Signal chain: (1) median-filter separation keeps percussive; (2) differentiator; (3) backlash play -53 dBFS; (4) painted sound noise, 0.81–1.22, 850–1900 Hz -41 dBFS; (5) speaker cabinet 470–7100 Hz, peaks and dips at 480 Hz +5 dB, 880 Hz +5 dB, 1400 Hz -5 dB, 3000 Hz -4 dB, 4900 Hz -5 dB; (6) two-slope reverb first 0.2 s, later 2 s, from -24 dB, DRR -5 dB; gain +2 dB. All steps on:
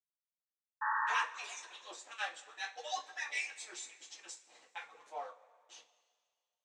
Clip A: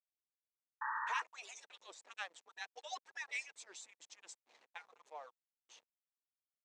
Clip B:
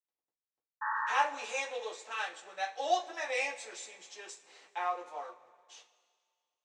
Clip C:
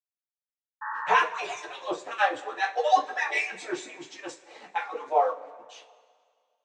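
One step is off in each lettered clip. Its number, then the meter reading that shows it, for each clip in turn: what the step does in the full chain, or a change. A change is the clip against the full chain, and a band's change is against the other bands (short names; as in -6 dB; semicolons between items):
6, crest factor change +3.5 dB; 1, 500 Hz band +11.5 dB; 2, 250 Hz band +16.5 dB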